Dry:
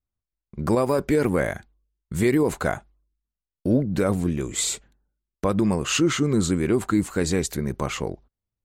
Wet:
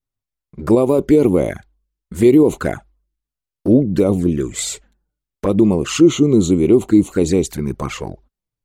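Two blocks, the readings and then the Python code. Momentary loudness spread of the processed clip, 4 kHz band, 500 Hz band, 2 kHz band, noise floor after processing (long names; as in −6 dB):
15 LU, +1.5 dB, +8.5 dB, −1.5 dB, below −85 dBFS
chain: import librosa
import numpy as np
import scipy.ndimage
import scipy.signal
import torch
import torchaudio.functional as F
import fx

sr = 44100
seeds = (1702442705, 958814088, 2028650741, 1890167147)

y = fx.dynamic_eq(x, sr, hz=340.0, q=1.3, threshold_db=-34.0, ratio=4.0, max_db=7)
y = fx.env_flanger(y, sr, rest_ms=7.5, full_db=-15.5)
y = y * librosa.db_to_amplitude(4.5)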